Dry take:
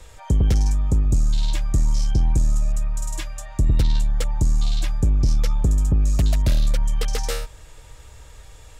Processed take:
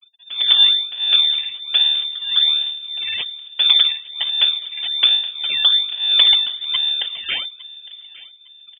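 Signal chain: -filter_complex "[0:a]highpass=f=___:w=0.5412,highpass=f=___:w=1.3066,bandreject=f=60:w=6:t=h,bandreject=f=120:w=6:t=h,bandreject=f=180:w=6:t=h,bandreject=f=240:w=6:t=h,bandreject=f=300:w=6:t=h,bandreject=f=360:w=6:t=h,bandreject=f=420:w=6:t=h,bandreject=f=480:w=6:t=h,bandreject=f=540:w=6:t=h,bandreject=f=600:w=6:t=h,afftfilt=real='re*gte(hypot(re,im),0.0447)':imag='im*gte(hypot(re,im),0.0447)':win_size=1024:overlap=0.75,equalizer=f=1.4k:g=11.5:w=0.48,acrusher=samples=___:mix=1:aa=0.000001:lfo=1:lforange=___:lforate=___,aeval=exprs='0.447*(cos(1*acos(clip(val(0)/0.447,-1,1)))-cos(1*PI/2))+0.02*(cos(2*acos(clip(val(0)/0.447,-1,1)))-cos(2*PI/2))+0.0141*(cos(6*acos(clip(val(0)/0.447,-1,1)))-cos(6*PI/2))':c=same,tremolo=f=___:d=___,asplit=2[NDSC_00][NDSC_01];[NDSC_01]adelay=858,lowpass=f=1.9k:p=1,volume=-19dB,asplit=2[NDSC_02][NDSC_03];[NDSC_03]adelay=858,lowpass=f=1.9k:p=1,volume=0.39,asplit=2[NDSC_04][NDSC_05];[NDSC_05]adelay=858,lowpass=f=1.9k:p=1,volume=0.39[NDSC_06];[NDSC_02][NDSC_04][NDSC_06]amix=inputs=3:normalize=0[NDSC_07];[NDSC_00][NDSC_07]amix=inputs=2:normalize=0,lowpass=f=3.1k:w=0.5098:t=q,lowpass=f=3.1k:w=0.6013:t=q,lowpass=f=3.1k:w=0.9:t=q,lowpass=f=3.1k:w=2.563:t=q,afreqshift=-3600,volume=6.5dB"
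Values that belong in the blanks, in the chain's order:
46, 46, 32, 32, 1.2, 1.6, 0.88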